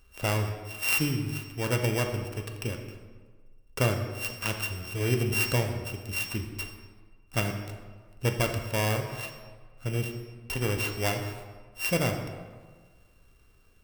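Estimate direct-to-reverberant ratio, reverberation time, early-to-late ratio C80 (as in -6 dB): 3.0 dB, 1.5 s, 8.0 dB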